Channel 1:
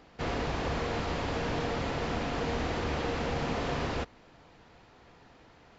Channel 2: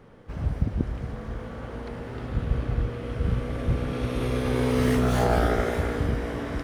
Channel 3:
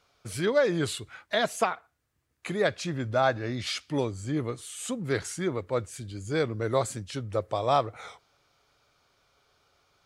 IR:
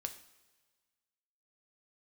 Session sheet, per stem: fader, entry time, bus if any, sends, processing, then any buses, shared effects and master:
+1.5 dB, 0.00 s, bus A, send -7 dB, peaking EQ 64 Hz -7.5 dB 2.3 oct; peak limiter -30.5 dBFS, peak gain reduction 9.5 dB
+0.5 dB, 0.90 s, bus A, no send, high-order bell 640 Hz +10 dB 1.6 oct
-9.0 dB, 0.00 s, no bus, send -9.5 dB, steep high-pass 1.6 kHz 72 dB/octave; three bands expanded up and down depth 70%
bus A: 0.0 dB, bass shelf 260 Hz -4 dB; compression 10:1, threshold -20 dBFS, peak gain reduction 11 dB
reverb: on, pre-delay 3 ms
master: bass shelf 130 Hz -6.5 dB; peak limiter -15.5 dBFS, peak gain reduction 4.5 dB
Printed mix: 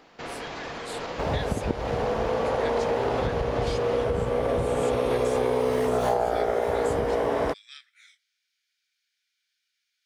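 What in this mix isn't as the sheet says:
stem 2 +0.5 dB -> +9.0 dB; stem 3: missing three bands expanded up and down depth 70%; master: missing peak limiter -15.5 dBFS, peak gain reduction 4.5 dB

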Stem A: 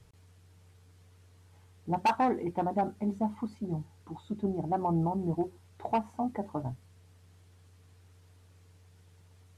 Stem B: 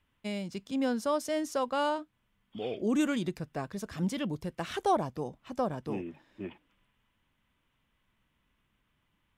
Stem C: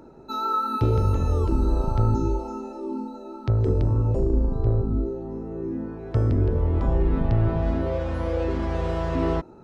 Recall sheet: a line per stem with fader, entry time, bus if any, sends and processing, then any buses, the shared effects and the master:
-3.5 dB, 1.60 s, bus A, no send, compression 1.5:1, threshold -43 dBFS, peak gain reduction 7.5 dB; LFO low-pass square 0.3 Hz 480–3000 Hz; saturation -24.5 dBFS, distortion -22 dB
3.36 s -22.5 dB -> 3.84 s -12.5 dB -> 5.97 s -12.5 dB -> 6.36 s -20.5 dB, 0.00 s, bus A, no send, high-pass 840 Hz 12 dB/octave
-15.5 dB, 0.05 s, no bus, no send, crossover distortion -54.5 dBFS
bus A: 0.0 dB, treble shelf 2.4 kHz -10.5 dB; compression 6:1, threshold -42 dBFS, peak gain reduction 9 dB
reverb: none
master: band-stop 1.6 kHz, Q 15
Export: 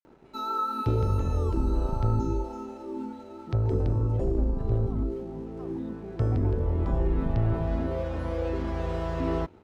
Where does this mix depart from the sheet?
stem A: missing compression 1.5:1, threshold -43 dBFS, peak gain reduction 7.5 dB; stem C -15.5 dB -> -4.0 dB; master: missing band-stop 1.6 kHz, Q 15

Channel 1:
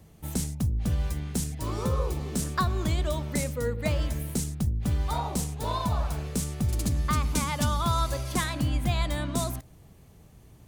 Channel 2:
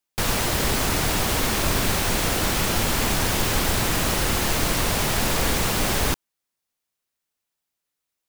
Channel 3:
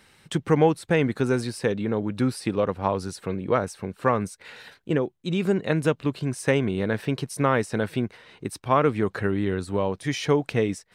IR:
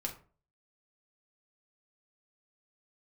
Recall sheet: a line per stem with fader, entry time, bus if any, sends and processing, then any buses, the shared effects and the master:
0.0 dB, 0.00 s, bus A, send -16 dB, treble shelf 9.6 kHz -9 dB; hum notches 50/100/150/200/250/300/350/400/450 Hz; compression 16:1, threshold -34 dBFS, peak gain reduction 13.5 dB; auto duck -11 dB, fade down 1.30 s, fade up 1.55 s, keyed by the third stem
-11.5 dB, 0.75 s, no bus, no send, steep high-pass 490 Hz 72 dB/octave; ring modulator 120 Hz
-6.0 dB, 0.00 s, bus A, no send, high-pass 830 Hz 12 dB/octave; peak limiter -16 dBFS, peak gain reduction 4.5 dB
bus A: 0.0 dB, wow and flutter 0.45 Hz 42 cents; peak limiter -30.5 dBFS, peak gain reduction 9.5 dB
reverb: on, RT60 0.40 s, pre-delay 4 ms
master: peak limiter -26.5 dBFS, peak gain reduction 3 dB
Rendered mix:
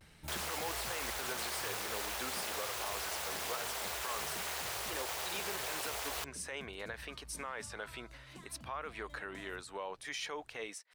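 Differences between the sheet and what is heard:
stem 1 0.0 dB -> -6.5 dB; stem 2: entry 0.75 s -> 0.10 s

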